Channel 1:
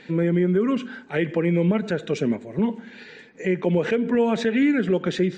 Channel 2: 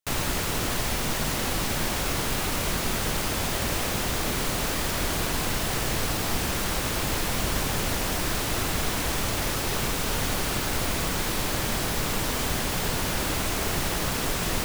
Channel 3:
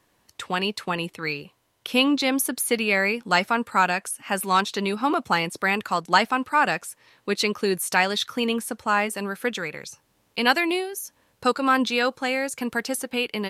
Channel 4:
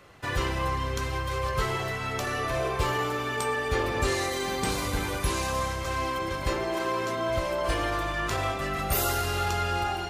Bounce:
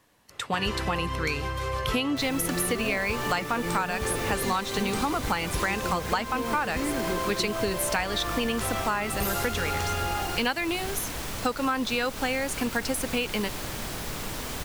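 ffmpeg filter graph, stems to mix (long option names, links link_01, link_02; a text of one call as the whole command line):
ffmpeg -i stem1.wav -i stem2.wav -i stem3.wav -i stem4.wav -filter_complex "[0:a]adelay=2200,volume=-9dB[link_01];[1:a]adelay=2100,volume=-7dB[link_02];[2:a]bandreject=frequency=370:width=12,volume=1.5dB[link_03];[3:a]adelay=300,volume=-0.5dB[link_04];[link_01][link_02][link_03][link_04]amix=inputs=4:normalize=0,acompressor=threshold=-23dB:ratio=10" out.wav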